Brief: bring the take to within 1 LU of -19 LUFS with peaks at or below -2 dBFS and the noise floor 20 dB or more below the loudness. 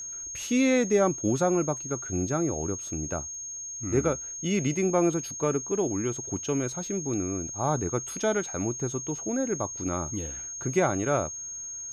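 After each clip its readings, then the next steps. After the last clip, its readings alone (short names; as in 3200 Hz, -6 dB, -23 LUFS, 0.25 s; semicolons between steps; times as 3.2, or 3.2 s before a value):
ticks 24/s; steady tone 6500 Hz; tone level -35 dBFS; loudness -28.0 LUFS; peak -12.5 dBFS; loudness target -19.0 LUFS
-> de-click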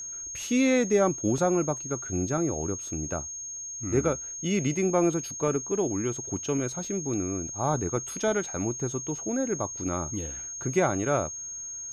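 ticks 0/s; steady tone 6500 Hz; tone level -35 dBFS
-> notch 6500 Hz, Q 30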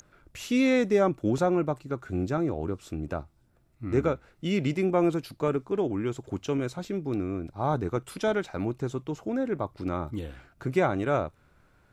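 steady tone none; loudness -29.0 LUFS; peak -13.0 dBFS; loudness target -19.0 LUFS
-> gain +10 dB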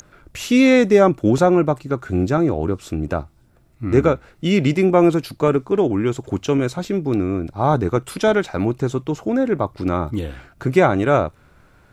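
loudness -19.0 LUFS; peak -3.0 dBFS; noise floor -54 dBFS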